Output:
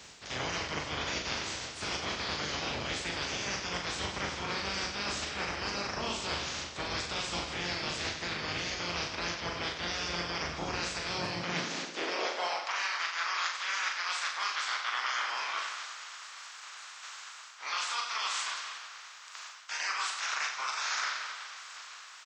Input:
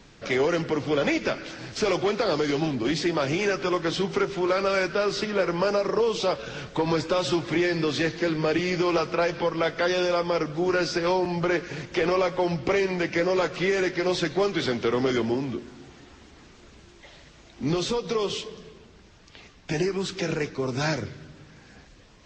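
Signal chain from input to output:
ceiling on every frequency bin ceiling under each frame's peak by 28 dB
reversed playback
downward compressor 6 to 1, threshold −35 dBFS, peak gain reduction 15.5 dB
reversed playback
high-pass filter sweep 65 Hz → 1,200 Hz, 0:10.96–0:12.79
reverse bouncing-ball delay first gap 40 ms, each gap 1.3×, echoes 5

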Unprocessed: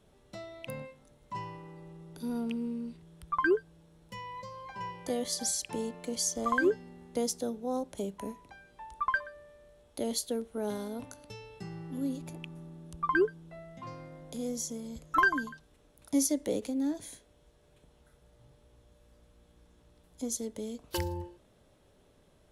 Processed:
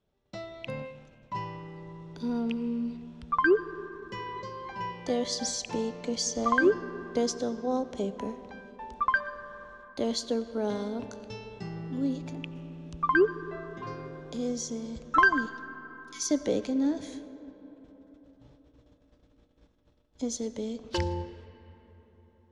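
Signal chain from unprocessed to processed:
0:15.46–0:16.31: Butterworth high-pass 2,100 Hz
noise gate −59 dBFS, range −18 dB
low-pass filter 6,200 Hz 24 dB per octave
comb and all-pass reverb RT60 4.5 s, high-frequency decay 0.45×, pre-delay 50 ms, DRR 14 dB
level +4 dB

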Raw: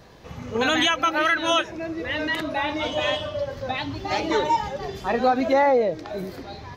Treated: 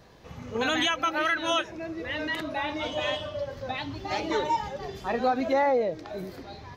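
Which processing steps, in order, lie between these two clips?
level −5 dB

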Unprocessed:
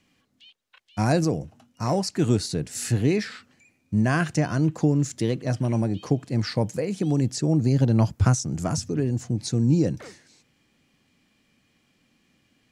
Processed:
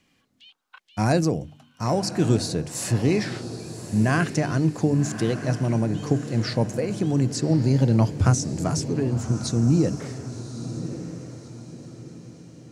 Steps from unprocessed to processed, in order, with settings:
hum removal 49.36 Hz, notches 6
gain on a spectral selection 0:00.51–0:00.78, 710–1,600 Hz +10 dB
feedback delay with all-pass diffusion 1,144 ms, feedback 41%, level −11 dB
level +1 dB

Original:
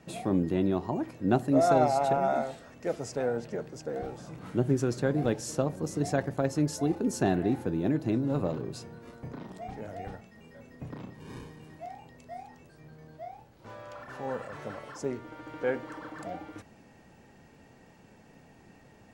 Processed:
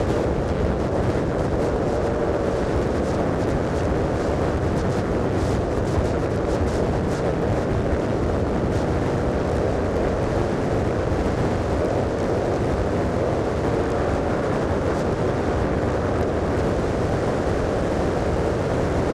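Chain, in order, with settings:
compressor on every frequency bin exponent 0.2
high-frequency loss of the air 120 metres
brickwall limiter −15 dBFS, peak gain reduction 10.5 dB
frequency shifter −220 Hz
high-pass filter 55 Hz 12 dB per octave
pitch-shifted copies added −5 semitones −7 dB, −4 semitones −8 dB, +4 semitones −2 dB
on a send: repeating echo 130 ms, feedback 40%, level −14 dB
on the sum: speech leveller 0.5 s
highs frequency-modulated by the lows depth 0.7 ms

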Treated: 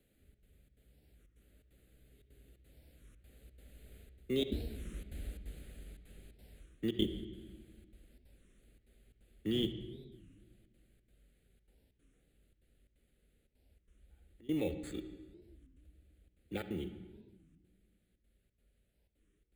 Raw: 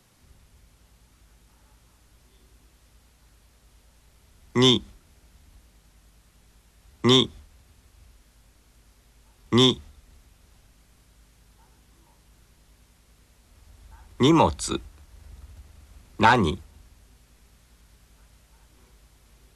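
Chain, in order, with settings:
source passing by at 0:05.07, 20 m/s, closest 9.7 metres
octave-band graphic EQ 125/500/1,000 Hz −7/+7/−12 dB
reversed playback
downward compressor 8 to 1, threshold −40 dBFS, peak gain reduction 21.5 dB
reversed playback
gate pattern "xxxx.xxx.xx" 176 BPM −24 dB
in parallel at −4 dB: decimation without filtering 14×
on the sum: phaser with its sweep stopped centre 2,400 Hz, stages 4
convolution reverb RT60 1.4 s, pre-delay 58 ms, DRR 10 dB
wow of a warped record 33 1/3 rpm, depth 250 cents
level +8.5 dB

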